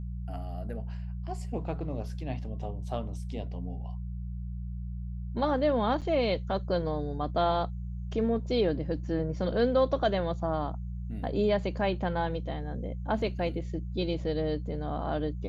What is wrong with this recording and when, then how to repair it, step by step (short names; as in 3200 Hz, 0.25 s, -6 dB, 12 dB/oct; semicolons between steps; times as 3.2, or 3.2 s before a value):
hum 60 Hz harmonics 3 -36 dBFS
6.01–6.02 gap 7.4 ms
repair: de-hum 60 Hz, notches 3; interpolate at 6.01, 7.4 ms